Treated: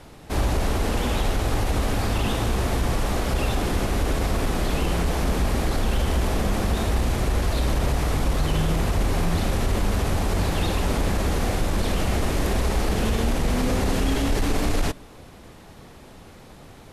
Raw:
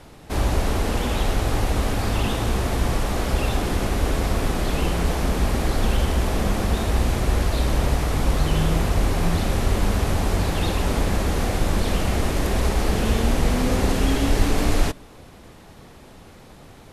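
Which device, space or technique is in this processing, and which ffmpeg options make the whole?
soft clipper into limiter: -af "asoftclip=type=tanh:threshold=-7dB,alimiter=limit=-14dB:level=0:latency=1:release=30"

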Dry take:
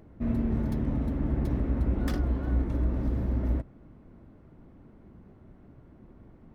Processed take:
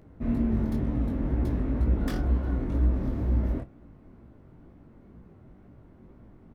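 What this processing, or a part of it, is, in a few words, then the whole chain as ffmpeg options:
double-tracked vocal: -filter_complex "[0:a]asplit=2[link_01][link_02];[link_02]adelay=31,volume=-13.5dB[link_03];[link_01][link_03]amix=inputs=2:normalize=0,flanger=delay=16.5:depth=6.9:speed=2.1,volume=3.5dB"

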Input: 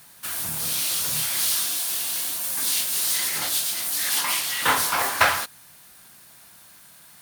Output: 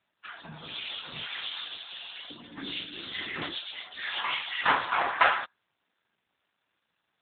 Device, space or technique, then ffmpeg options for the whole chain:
mobile call with aggressive noise cancelling: -filter_complex "[0:a]asettb=1/sr,asplit=3[link_01][link_02][link_03];[link_01]atrim=end=2.304[link_04];[link_02]atrim=start=2.3:end=3.53,asetpts=PTS-STARTPTS,afade=type=in:duration=0.004:curve=qsin,afade=type=out:start_time=1.226:duration=0.004:curve=qsin,lowshelf=frequency=410:width_type=q:width=1.5:gain=7[link_05];[link_03]atrim=start=3.526[link_06];[link_04][link_05]acrossfade=duration=0.004:curve1=hsin:curve2=qsin[link_07];[link_07][link_06]acrossfade=duration=0.004:curve1=qsin:curve2=hsin,highpass=180,afftdn=noise_reduction=20:noise_floor=-37" -ar 8000 -c:a libopencore_amrnb -b:a 7950

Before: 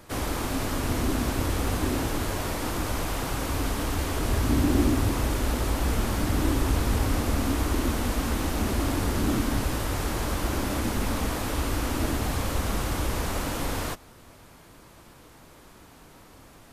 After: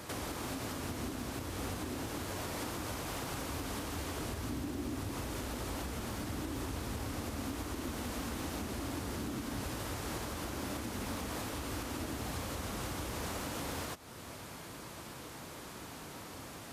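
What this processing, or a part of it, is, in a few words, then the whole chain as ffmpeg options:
broadcast voice chain: -af "highpass=76,deesser=0.65,acompressor=threshold=-39dB:ratio=3,equalizer=frequency=5600:width_type=o:width=2.1:gain=2.5,alimiter=level_in=9dB:limit=-24dB:level=0:latency=1:release=444,volume=-9dB,volume=4dB"

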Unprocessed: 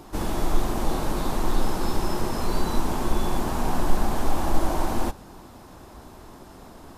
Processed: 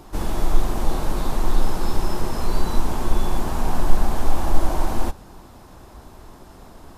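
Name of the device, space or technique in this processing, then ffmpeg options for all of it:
low shelf boost with a cut just above: -af "lowshelf=frequency=67:gain=6.5,equalizer=frequency=270:width_type=o:width=0.77:gain=-2"

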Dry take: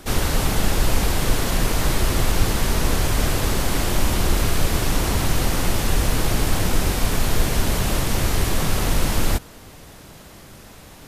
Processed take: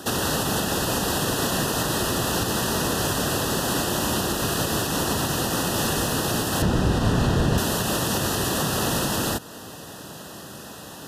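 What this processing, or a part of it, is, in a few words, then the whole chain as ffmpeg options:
PA system with an anti-feedback notch: -filter_complex "[0:a]highpass=140,asuperstop=centerf=2200:order=8:qfactor=3.7,alimiter=limit=-19.5dB:level=0:latency=1:release=220,asettb=1/sr,asplit=3[link_01][link_02][link_03];[link_01]atrim=end=6.624[link_04];[link_02]atrim=start=6.62:end=7.58,asetpts=PTS-STARTPTS,afade=type=in:duration=0.004:curve=qsin,afade=type=out:start_time=0.956:duration=0.004:curve=qsin,aemphasis=mode=reproduction:type=bsi[link_05];[link_03]atrim=start=7.576[link_06];[link_04][link_05]acrossfade=duration=0.004:curve1=hsin:curve2=qsin[link_07];[link_07][link_06]acrossfade=duration=0.004:curve1=qsin:curve2=hsin,volume=5.5dB"

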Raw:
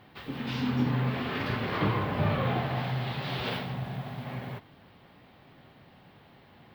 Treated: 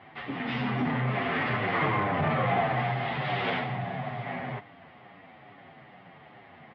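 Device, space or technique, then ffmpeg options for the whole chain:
barber-pole flanger into a guitar amplifier: -filter_complex "[0:a]asplit=2[link_01][link_02];[link_02]adelay=8.4,afreqshift=-2.3[link_03];[link_01][link_03]amix=inputs=2:normalize=1,asoftclip=type=tanh:threshold=-26.5dB,highpass=110,equalizer=frequency=720:width_type=q:width=4:gain=9,equalizer=frequency=1200:width_type=q:width=4:gain=4,equalizer=frequency=2000:width_type=q:width=4:gain=9,equalizer=frequency=4100:width_type=q:width=4:gain=-6,lowpass=frequency=4100:width=0.5412,lowpass=frequency=4100:width=1.3066,volume=5dB"

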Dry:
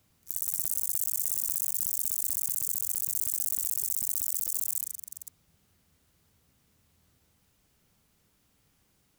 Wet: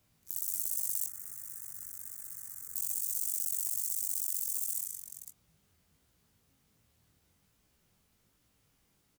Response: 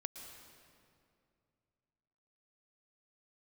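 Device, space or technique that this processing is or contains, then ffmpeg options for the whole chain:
double-tracked vocal: -filter_complex "[0:a]asettb=1/sr,asplit=3[link_01][link_02][link_03];[link_01]atrim=end=1.074[link_04];[link_02]atrim=start=1.07:end=2.75,asetpts=PTS-STARTPTS,afade=type=in:duration=0.004:curve=qsin,afade=type=out:start_time=1.676:duration=0.004:curve=qsin,highshelf=frequency=2300:width_type=q:width=3:gain=-10.5[link_05];[link_03]atrim=start=2.746[link_06];[link_04][link_05]acrossfade=duration=0.004:curve1=hsin:curve2=qsin[link_07];[link_07][link_06]acrossfade=duration=0.004:curve1=qsin:curve2=hsin,asplit=2[link_08][link_09];[link_09]adelay=26,volume=-13.5dB[link_10];[link_08][link_10]amix=inputs=2:normalize=0,flanger=delay=16.5:depth=5.7:speed=1.3"

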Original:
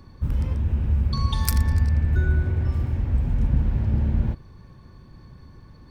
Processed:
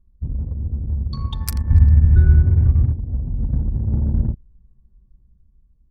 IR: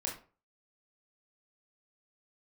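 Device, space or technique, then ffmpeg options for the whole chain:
voice memo with heavy noise removal: -filter_complex "[0:a]asettb=1/sr,asplit=3[link_01][link_02][link_03];[link_01]atrim=end=1.704[link_04];[link_02]atrim=start=1.7:end=2.93,asetpts=PTS-STARTPTS,afade=type=in:duration=0.004:curve=qsin,afade=type=out:start_time=1.226:duration=0.004:curve=qsin,bass=frequency=250:gain=11,treble=frequency=4000:gain=2[link_05];[link_03]atrim=start=2.926[link_06];[link_04][link_05]acrossfade=duration=0.004:curve1=hsin:curve2=qsin[link_07];[link_07][link_06]acrossfade=duration=0.004:curve1=qsin:curve2=hsin,anlmdn=158,dynaudnorm=framelen=210:gausssize=11:maxgain=6dB,volume=-1dB"

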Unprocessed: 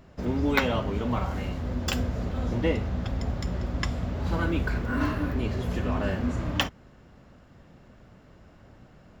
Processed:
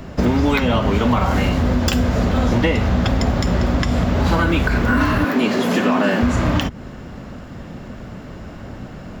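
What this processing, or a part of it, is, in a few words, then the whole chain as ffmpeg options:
mastering chain: -filter_complex "[0:a]asettb=1/sr,asplit=3[link_01][link_02][link_03];[link_01]atrim=end=5.244[link_04];[link_02]atrim=start=5.24:end=6.22,asetpts=PTS-STARTPTS,afade=type=in:duration=0.004:curve=qsin,afade=type=out:start_time=0.976:duration=0.004:curve=qsin,highpass=frequency=220:width=0.5412,highpass=frequency=220:width=1.3066[link_05];[link_03]atrim=start=6.216[link_06];[link_04][link_05]acrossfade=duration=0.004:curve1=hsin:curve2=qsin[link_07];[link_07][link_06]acrossfade=duration=0.004:curve1=qsin:curve2=hsin,equalizer=frequency=230:width_type=o:width=0.77:gain=3.5,acrossover=split=230|610[link_08][link_09][link_10];[link_08]acompressor=threshold=-33dB:ratio=4[link_11];[link_09]acompressor=threshold=-40dB:ratio=4[link_12];[link_10]acompressor=threshold=-33dB:ratio=4[link_13];[link_11][link_12][link_13]amix=inputs=3:normalize=0,acompressor=threshold=-30dB:ratio=6,alimiter=level_in=23dB:limit=-1dB:release=50:level=0:latency=1,volume=-5dB"

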